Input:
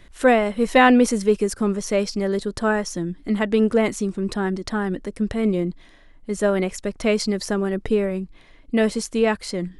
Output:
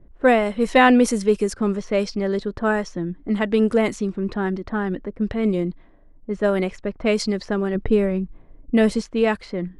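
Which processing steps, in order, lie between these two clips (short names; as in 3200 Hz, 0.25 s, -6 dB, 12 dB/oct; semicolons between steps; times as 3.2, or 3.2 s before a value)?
low-pass opened by the level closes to 480 Hz, open at -15.5 dBFS; 7.75–9.02 low shelf 230 Hz +6.5 dB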